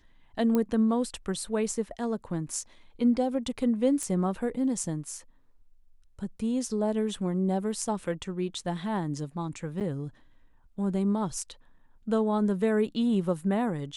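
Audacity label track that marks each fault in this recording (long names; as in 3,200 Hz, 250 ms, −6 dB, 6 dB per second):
0.550000	0.550000	click −15 dBFS
4.030000	4.030000	click −20 dBFS
9.800000	9.810000	drop-out 8.3 ms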